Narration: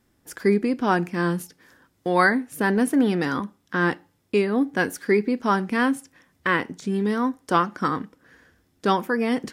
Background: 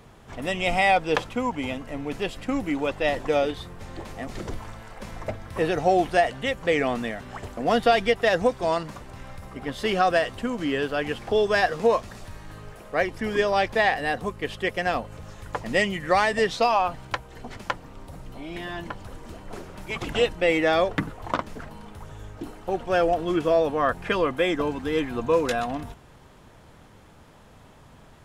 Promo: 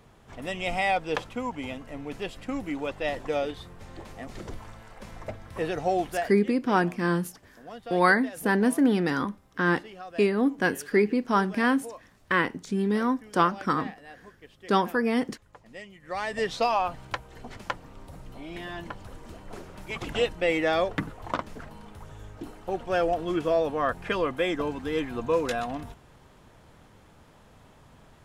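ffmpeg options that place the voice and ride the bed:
ffmpeg -i stem1.wav -i stem2.wav -filter_complex "[0:a]adelay=5850,volume=-2dB[link_01];[1:a]volume=12dB,afade=type=out:start_time=6.01:duration=0.43:silence=0.16788,afade=type=in:start_time=16.01:duration=0.55:silence=0.133352[link_02];[link_01][link_02]amix=inputs=2:normalize=0" out.wav

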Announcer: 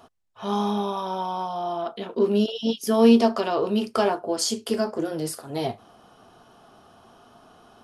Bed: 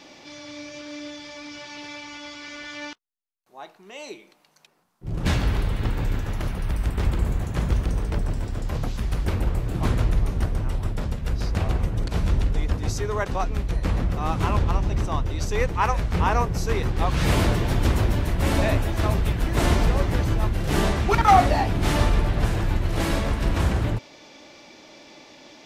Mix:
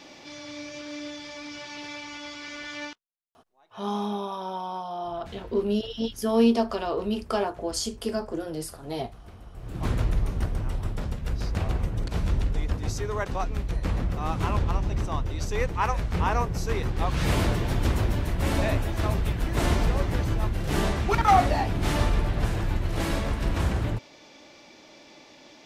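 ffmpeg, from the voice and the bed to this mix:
ffmpeg -i stem1.wav -i stem2.wav -filter_complex "[0:a]adelay=3350,volume=-4.5dB[link_01];[1:a]volume=18.5dB,afade=type=out:start_time=2.83:duration=0.25:silence=0.0794328,afade=type=in:start_time=9.53:duration=0.4:silence=0.112202[link_02];[link_01][link_02]amix=inputs=2:normalize=0" out.wav

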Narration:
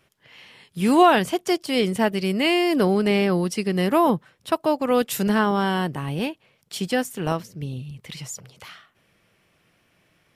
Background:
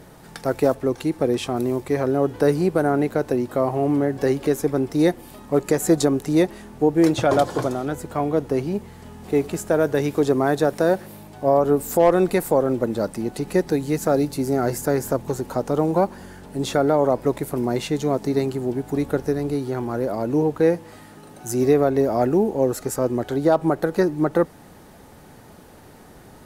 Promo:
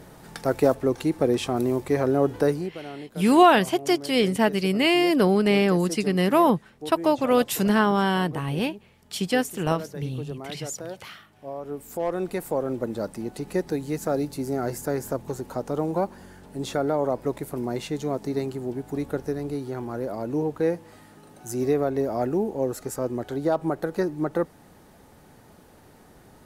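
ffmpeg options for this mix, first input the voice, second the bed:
ffmpeg -i stem1.wav -i stem2.wav -filter_complex "[0:a]adelay=2400,volume=0dB[link_01];[1:a]volume=11dB,afade=type=out:start_time=2.34:duration=0.4:silence=0.141254,afade=type=in:start_time=11.57:duration=1.3:silence=0.251189[link_02];[link_01][link_02]amix=inputs=2:normalize=0" out.wav

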